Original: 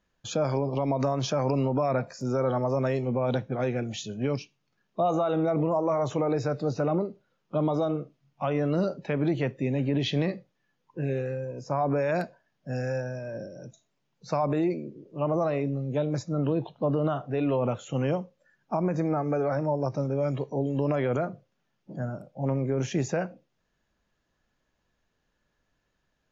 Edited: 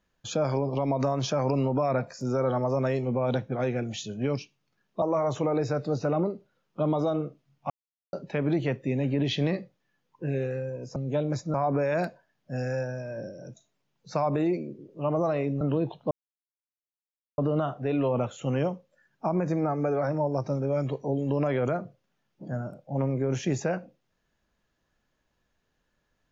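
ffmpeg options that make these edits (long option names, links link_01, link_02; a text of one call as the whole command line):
ffmpeg -i in.wav -filter_complex "[0:a]asplit=8[link_01][link_02][link_03][link_04][link_05][link_06][link_07][link_08];[link_01]atrim=end=5.022[link_09];[link_02]atrim=start=5.768:end=8.45,asetpts=PTS-STARTPTS,afade=type=out:start_time=2.678:duration=0.004:curve=hsin[link_10];[link_03]atrim=start=8.45:end=8.88,asetpts=PTS-STARTPTS,volume=0[link_11];[link_04]atrim=start=8.88:end=11.712,asetpts=PTS-STARTPTS,afade=type=in:duration=0.004:curve=hsin[link_12];[link_05]atrim=start=15.778:end=16.362[link_13];[link_06]atrim=start=11.708:end=15.782[link_14];[link_07]atrim=start=16.358:end=16.86,asetpts=PTS-STARTPTS,afade=type=out:start_time=0.498:duration=0.004:curve=hsin,apad=pad_dur=1.27[link_15];[link_08]atrim=start=16.86,asetpts=PTS-STARTPTS,afade=type=in:duration=0.004:curve=hsin[link_16];[link_10][link_11][link_12]concat=n=3:v=0:a=1[link_17];[link_09][link_17]acrossfade=duration=0.004:curve1=hsin:curve2=hsin[link_18];[link_18][link_13]acrossfade=duration=0.004:curve1=hsin:curve2=hsin[link_19];[link_19][link_14]acrossfade=duration=0.004:curve1=hsin:curve2=hsin[link_20];[link_15][link_16]concat=n=2:v=0:a=1[link_21];[link_20][link_21]acrossfade=duration=0.004:curve1=hsin:curve2=hsin" out.wav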